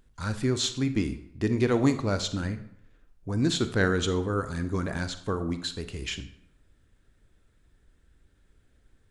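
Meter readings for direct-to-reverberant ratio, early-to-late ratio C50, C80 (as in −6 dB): 10.0 dB, 12.0 dB, 15.0 dB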